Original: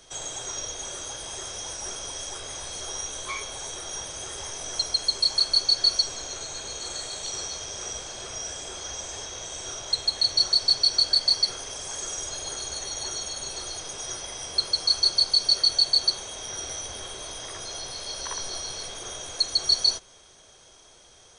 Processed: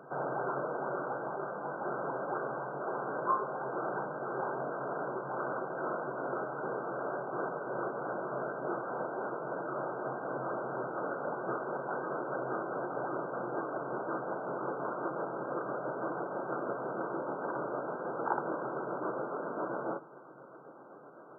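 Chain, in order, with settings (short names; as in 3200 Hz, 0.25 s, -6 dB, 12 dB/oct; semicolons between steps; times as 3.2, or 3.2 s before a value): gliding pitch shift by -3 st starting unshifted; FFT band-pass 120–1600 Hz; gain +8.5 dB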